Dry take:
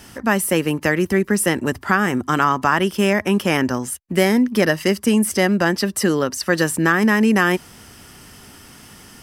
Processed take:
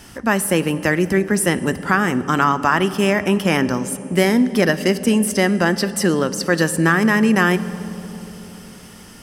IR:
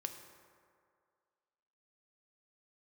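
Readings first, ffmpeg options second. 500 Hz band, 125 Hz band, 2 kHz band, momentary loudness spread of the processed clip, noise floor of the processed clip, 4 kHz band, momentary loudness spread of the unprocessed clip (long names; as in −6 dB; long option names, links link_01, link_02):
+0.5 dB, +2.0 dB, +0.5 dB, 11 LU, −41 dBFS, +0.5 dB, 5 LU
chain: -filter_complex "[0:a]asplit=2[link_01][link_02];[1:a]atrim=start_sample=2205,asetrate=22050,aresample=44100,lowshelf=frequency=66:gain=9.5[link_03];[link_02][link_03]afir=irnorm=-1:irlink=0,volume=-6dB[link_04];[link_01][link_04]amix=inputs=2:normalize=0,volume=-3.5dB"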